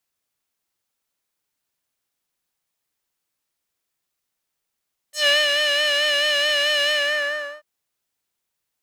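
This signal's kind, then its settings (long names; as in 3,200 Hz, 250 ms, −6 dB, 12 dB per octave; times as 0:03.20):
subtractive patch with vibrato D5, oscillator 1 square, interval +12 semitones, oscillator 2 level −11.5 dB, sub −20 dB, noise −11 dB, filter bandpass, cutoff 1,200 Hz, Q 1.8, filter envelope 3 octaves, filter decay 0.10 s, attack 138 ms, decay 0.21 s, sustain −4 dB, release 0.73 s, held 1.76 s, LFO 4.6 Hz, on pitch 47 cents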